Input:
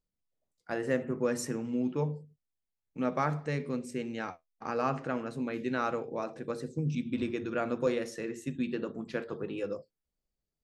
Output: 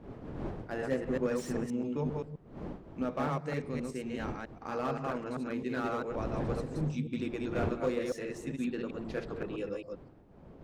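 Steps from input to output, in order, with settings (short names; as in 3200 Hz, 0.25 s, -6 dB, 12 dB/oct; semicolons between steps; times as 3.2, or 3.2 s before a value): reverse delay 0.131 s, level -2 dB; wind noise 360 Hz -40 dBFS; slew limiter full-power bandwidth 48 Hz; gain -3.5 dB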